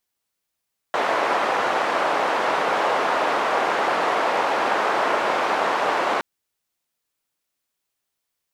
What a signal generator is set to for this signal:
band-limited noise 570–910 Hz, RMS −21.5 dBFS 5.27 s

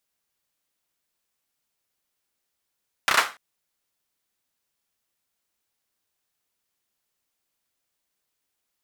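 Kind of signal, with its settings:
synth clap length 0.29 s, bursts 4, apart 31 ms, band 1,300 Hz, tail 0.29 s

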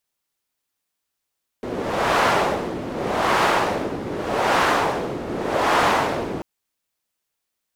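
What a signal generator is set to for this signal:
wind from filtered noise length 4.79 s, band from 350 Hz, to 1,000 Hz, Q 1.1, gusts 4, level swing 11 dB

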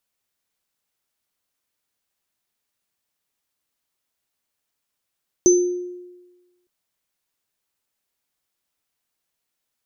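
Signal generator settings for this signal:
inharmonic partials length 1.21 s, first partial 357 Hz, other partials 6,130 Hz, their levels −4 dB, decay 1.21 s, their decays 0.45 s, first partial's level −9.5 dB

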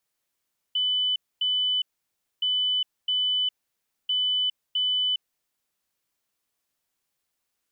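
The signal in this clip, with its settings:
beeps in groups sine 3,000 Hz, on 0.41 s, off 0.25 s, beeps 2, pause 0.60 s, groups 3, −21.5 dBFS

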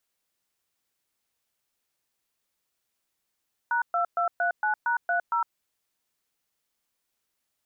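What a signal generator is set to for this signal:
touch tones "#2239#30", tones 109 ms, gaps 121 ms, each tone −25 dBFS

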